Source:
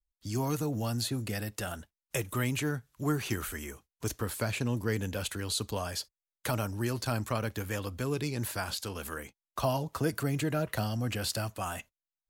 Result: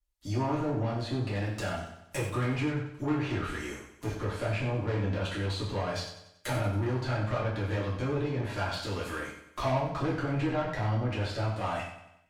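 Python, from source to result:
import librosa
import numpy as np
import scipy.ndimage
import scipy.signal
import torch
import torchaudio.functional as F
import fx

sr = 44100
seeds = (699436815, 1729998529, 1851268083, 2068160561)

p1 = fx.env_lowpass_down(x, sr, base_hz=2200.0, full_db=-29.5)
p2 = fx.tube_stage(p1, sr, drive_db=32.0, bias=0.35)
p3 = p2 + fx.echo_feedback(p2, sr, ms=93, feedback_pct=50, wet_db=-11, dry=0)
y = fx.rev_gated(p3, sr, seeds[0], gate_ms=160, shape='falling', drr_db=-5.5)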